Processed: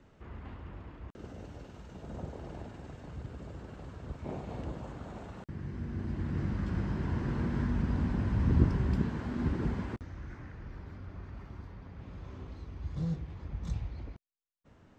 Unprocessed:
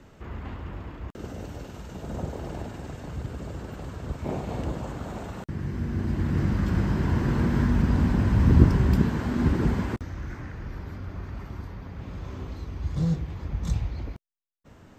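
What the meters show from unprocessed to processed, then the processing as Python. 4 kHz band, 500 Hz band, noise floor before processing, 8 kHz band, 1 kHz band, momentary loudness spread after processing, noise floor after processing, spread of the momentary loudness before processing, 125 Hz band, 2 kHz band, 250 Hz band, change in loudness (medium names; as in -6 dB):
-10.0 dB, -8.5 dB, -52 dBFS, no reading, -9.0 dB, 16 LU, -60 dBFS, 16 LU, -8.5 dB, -9.0 dB, -8.5 dB, -8.5 dB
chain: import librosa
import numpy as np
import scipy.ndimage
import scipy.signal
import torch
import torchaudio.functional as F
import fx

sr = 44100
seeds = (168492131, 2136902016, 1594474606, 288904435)

y = fx.air_absorb(x, sr, metres=58.0)
y = F.gain(torch.from_numpy(y), -8.5).numpy()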